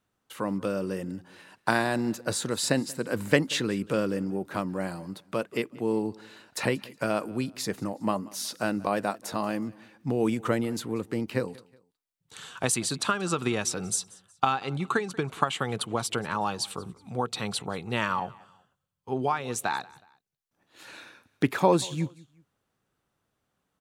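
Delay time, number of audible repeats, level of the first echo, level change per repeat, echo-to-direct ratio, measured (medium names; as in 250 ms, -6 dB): 184 ms, 2, -23.0 dB, -8.5 dB, -22.5 dB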